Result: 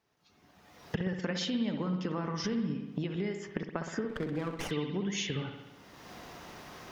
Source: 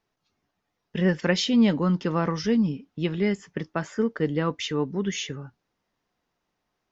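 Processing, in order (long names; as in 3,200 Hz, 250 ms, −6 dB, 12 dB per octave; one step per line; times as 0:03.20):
camcorder AGC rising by 30 dB per second
high-pass filter 50 Hz
downward compressor, threshold −32 dBFS, peak gain reduction 16 dB
spring reverb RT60 1.1 s, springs 60 ms, chirp 35 ms, DRR 5 dB
0:04.09–0:04.71: windowed peak hold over 9 samples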